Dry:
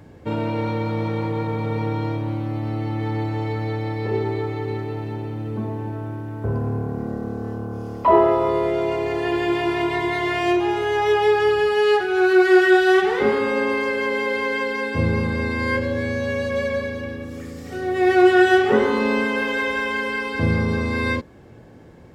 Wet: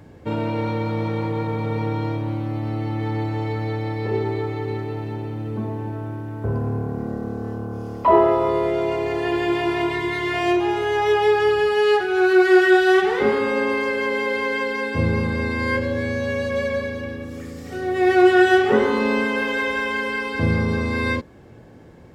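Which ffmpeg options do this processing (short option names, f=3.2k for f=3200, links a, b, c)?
-filter_complex "[0:a]asettb=1/sr,asplit=3[a][b][c];[a]atrim=end=9.924[d];[b]atrim=start=9.92:end=10.34,asetpts=PTS-STARTPTS,afade=t=in:d=0.004:c=qsin,afade=t=out:st=0.416:d=0.004:c=qsin,equalizer=f=710:t=o:w=0.71:g=-8[e];[c]atrim=start=10.336[f];[d][e]acrossfade=d=0.004:c1=hsin:c2=qsin[g];[g][f]acrossfade=d=0.004:c1=qsin:c2=hsin"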